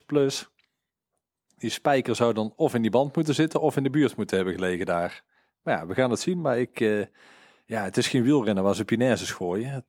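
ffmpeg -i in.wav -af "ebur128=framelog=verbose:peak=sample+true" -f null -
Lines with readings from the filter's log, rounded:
Integrated loudness:
  I:         -25.3 LUFS
  Threshold: -35.8 LUFS
Loudness range:
  LRA:         3.1 LU
  Threshold: -45.9 LUFS
  LRA low:   -27.6 LUFS
  LRA high:  -24.6 LUFS
Sample peak:
  Peak:       -7.5 dBFS
True peak:
  Peak:       -7.5 dBFS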